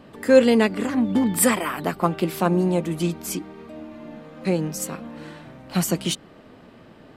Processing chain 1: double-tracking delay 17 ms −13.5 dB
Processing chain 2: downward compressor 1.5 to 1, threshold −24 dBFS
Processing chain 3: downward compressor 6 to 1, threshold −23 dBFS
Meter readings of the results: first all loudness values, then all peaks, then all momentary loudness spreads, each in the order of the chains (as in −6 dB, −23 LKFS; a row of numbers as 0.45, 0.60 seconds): −21.5, −25.5, −29.0 LKFS; −2.5, −9.0, −12.0 dBFS; 22, 18, 15 LU